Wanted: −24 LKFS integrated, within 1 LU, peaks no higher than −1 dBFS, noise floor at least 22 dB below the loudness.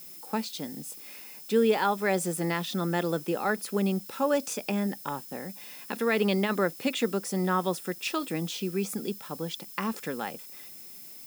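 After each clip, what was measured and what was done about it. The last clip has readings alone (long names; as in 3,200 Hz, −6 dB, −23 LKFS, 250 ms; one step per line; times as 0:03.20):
interfering tone 5,200 Hz; level of the tone −56 dBFS; background noise floor −46 dBFS; target noise floor −52 dBFS; integrated loudness −29.5 LKFS; sample peak −13.5 dBFS; target loudness −24.0 LKFS
→ notch filter 5,200 Hz, Q 30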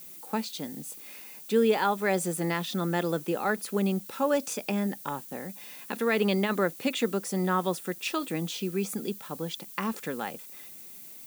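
interfering tone none found; background noise floor −46 dBFS; target noise floor −52 dBFS
→ noise reduction from a noise print 6 dB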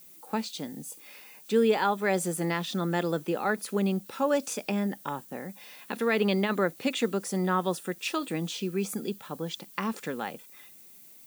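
background noise floor −52 dBFS; integrated loudness −29.5 LKFS; sample peak −13.5 dBFS; target loudness −24.0 LKFS
→ level +5.5 dB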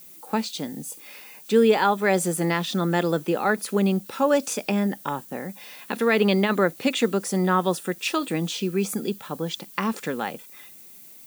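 integrated loudness −24.0 LKFS; sample peak −8.0 dBFS; background noise floor −46 dBFS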